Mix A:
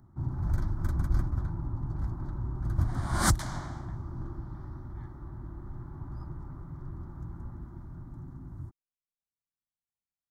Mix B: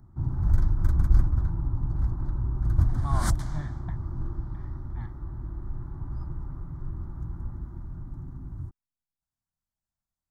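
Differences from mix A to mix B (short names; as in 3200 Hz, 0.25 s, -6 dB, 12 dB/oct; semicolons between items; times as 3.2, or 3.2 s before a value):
speech +9.0 dB; second sound -7.0 dB; master: add low shelf 80 Hz +11 dB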